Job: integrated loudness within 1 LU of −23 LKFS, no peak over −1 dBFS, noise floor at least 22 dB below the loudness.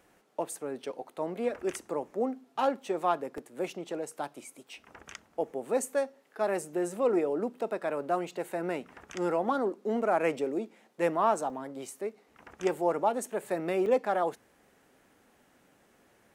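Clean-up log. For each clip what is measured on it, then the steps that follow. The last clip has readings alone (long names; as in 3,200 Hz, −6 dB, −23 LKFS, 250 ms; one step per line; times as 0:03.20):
number of dropouts 4; longest dropout 1.6 ms; integrated loudness −32.0 LKFS; sample peak −13.5 dBFS; target loudness −23.0 LKFS
→ repair the gap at 0:00.53/0:03.38/0:11.50/0:13.86, 1.6 ms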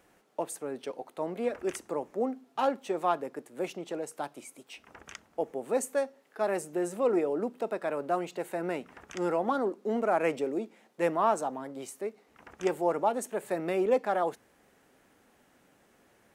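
number of dropouts 0; integrated loudness −32.0 LKFS; sample peak −13.5 dBFS; target loudness −23.0 LKFS
→ level +9 dB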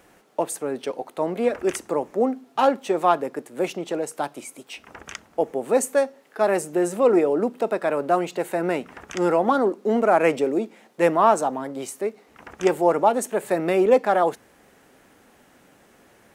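integrated loudness −23.0 LKFS; sample peak −4.5 dBFS; background noise floor −56 dBFS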